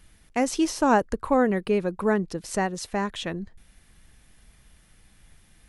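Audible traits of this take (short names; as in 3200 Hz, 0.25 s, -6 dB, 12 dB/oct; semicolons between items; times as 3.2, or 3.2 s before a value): noise floor -59 dBFS; spectral tilt -5.0 dB/oct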